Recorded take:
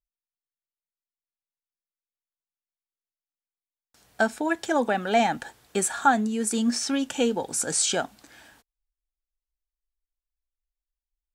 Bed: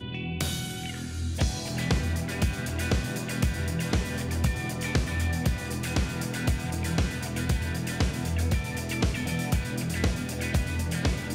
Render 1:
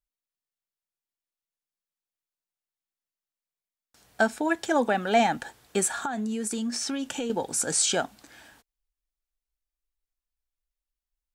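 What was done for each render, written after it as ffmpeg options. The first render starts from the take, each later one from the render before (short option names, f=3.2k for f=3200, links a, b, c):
-filter_complex "[0:a]asettb=1/sr,asplit=3[a][b][c];[a]atrim=end=5.994[d];[b]atrim=start=5.99:end=7.3,asetpts=PTS-STARTPTS,afade=t=in:d=0.004:c=qsin,afade=t=out:st=1.306:d=0.004:c=qsin,acompressor=threshold=-26dB:ratio=16:attack=3.2:release=140:knee=1:detection=peak[e];[c]atrim=start=7.296[f];[d][e]acrossfade=d=0.004:c1=hsin:c2=qsin[g];[g][f]acrossfade=d=0.004:c1=qsin:c2=hsin"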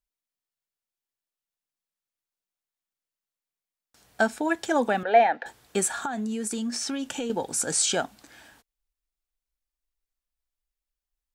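-filter_complex "[0:a]asettb=1/sr,asplit=3[a][b][c];[a]atrim=end=5.034[d];[b]atrim=start=5.03:end=5.46,asetpts=PTS-STARTPTS,afade=t=in:d=0.004:c=qsin,afade=t=out:st=0.426:d=0.004:c=qsin,highpass=430,equalizer=f=490:t=q:w=4:g=7,equalizer=f=690:t=q:w=4:g=5,equalizer=f=1.2k:t=q:w=4:g=-7,equalizer=f=1.8k:t=q:w=4:g=5,equalizer=f=3.1k:t=q:w=4:g=-7,lowpass=f=3.5k:w=0.5412,lowpass=f=3.5k:w=1.3066[e];[c]atrim=start=5.456[f];[d][e]acrossfade=d=0.004:c1=hsin:c2=qsin[g];[g][f]acrossfade=d=0.004:c1=qsin:c2=hsin"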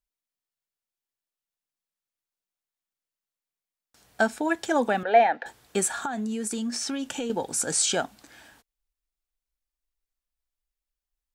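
-af anull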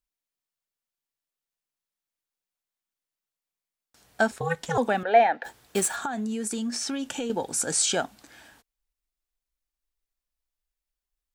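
-filter_complex "[0:a]asettb=1/sr,asplit=3[a][b][c];[a]atrim=end=4.314[d];[b]atrim=start=4.31:end=4.78,asetpts=PTS-STARTPTS,afade=t=in:d=0.004:c=qsin,afade=t=out:st=0.466:d=0.004:c=qsin,aeval=exprs='val(0)*sin(2*PI*170*n/s)':c=same[e];[c]atrim=start=4.776[f];[d][e]acrossfade=d=0.004:c1=hsin:c2=qsin[g];[g][f]acrossfade=d=0.004:c1=qsin:c2=hsin,asplit=3[h][i][j];[h]afade=t=out:st=5.43:d=0.02[k];[i]acrusher=bits=3:mode=log:mix=0:aa=0.000001,afade=t=in:st=5.43:d=0.02,afade=t=out:st=5.95:d=0.02[l];[j]afade=t=in:st=5.95:d=0.02[m];[k][l][m]amix=inputs=3:normalize=0"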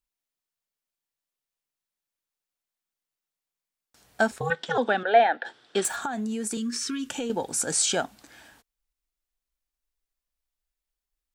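-filter_complex "[0:a]asettb=1/sr,asplit=3[a][b][c];[a]atrim=end=4.504[d];[b]atrim=start=4.5:end=5.85,asetpts=PTS-STARTPTS,afade=t=in:d=0.004:c=qsin,afade=t=out:st=1.346:d=0.004:c=qsin,highpass=220,equalizer=f=360:t=q:w=4:g=3,equalizer=f=1k:t=q:w=4:g=-3,equalizer=f=1.5k:t=q:w=4:g=6,equalizer=f=2.3k:t=q:w=4:g=-3,equalizer=f=3.4k:t=q:w=4:g=8,equalizer=f=6.6k:t=q:w=4:g=-9,lowpass=f=6.7k:w=0.5412,lowpass=f=6.7k:w=1.3066[e];[c]atrim=start=5.846[f];[d][e]acrossfade=d=0.004:c1=hsin:c2=qsin[g];[g][f]acrossfade=d=0.004:c1=qsin:c2=hsin,asettb=1/sr,asplit=3[h][i][j];[h]atrim=end=6.574[k];[i]atrim=start=6.57:end=7.1,asetpts=PTS-STARTPTS,afade=t=in:d=0.004:c=qsin,afade=t=out:st=0.526:d=0.004:c=qsin,asuperstop=centerf=700:order=12:qfactor=1.3[l];[j]atrim=start=7.096[m];[k][l]acrossfade=d=0.004:c1=hsin:c2=qsin[n];[n][m]acrossfade=d=0.004:c1=qsin:c2=hsin"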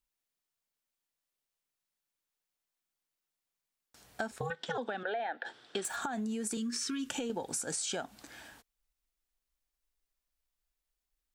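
-af "alimiter=limit=-18dB:level=0:latency=1:release=241,acompressor=threshold=-33dB:ratio=6"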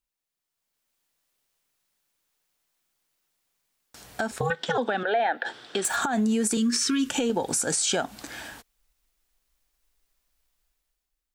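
-af "alimiter=level_in=3dB:limit=-24dB:level=0:latency=1:release=105,volume=-3dB,dynaudnorm=f=130:g=11:m=12dB"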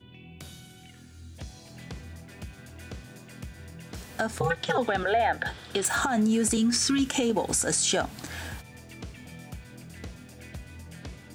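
-filter_complex "[1:a]volume=-15dB[a];[0:a][a]amix=inputs=2:normalize=0"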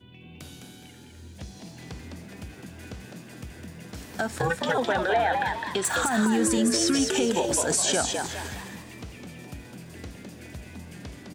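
-filter_complex "[0:a]asplit=6[a][b][c][d][e][f];[b]adelay=208,afreqshift=110,volume=-4.5dB[g];[c]adelay=416,afreqshift=220,volume=-13.1dB[h];[d]adelay=624,afreqshift=330,volume=-21.8dB[i];[e]adelay=832,afreqshift=440,volume=-30.4dB[j];[f]adelay=1040,afreqshift=550,volume=-39dB[k];[a][g][h][i][j][k]amix=inputs=6:normalize=0"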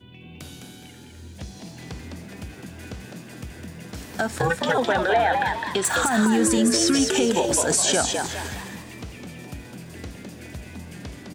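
-af "volume=3.5dB"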